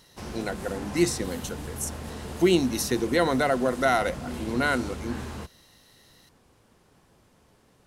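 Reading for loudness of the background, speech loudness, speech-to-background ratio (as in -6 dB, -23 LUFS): -37.5 LUFS, -26.5 LUFS, 11.0 dB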